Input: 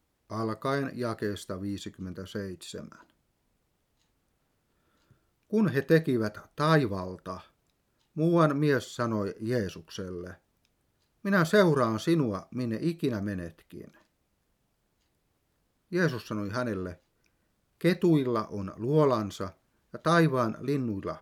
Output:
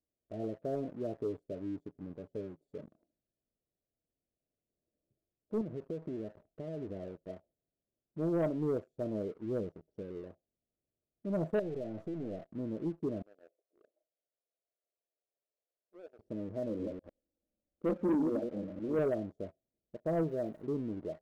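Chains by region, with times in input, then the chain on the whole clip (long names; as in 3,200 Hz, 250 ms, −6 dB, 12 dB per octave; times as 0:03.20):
0:01.15–0:02.82: comb filter 7.1 ms, depth 51% + one half of a high-frequency compander encoder only
0:05.61–0:07.26: downward compressor 12 to 1, threshold −28 dBFS + high-frequency loss of the air 370 metres + highs frequency-modulated by the lows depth 0.13 ms
0:11.59–0:12.50: gain on one half-wave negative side −7 dB + downward compressor 5 to 1, threshold −35 dBFS + leveller curve on the samples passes 2
0:13.22–0:16.19: downward compressor 2 to 1, threshold −42 dBFS + high-pass filter 460 Hz 24 dB per octave
0:16.69–0:18.99: delay that plays each chunk backwards 100 ms, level −4 dB + comb filter 3.7 ms, depth 68%
0:20.23–0:20.63: spike at every zero crossing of −24.5 dBFS + low-shelf EQ 390 Hz −4.5 dB
whole clip: elliptic low-pass filter 680 Hz, stop band 40 dB; low-shelf EQ 290 Hz −9 dB; leveller curve on the samples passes 2; level −8.5 dB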